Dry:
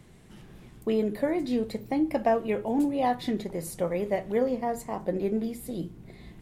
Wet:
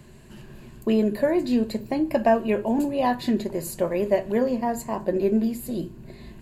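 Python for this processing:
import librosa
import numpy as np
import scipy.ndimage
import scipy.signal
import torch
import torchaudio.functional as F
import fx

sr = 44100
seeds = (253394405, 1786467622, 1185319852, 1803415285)

y = fx.ripple_eq(x, sr, per_octave=1.4, db=8)
y = y * 10.0 ** (4.0 / 20.0)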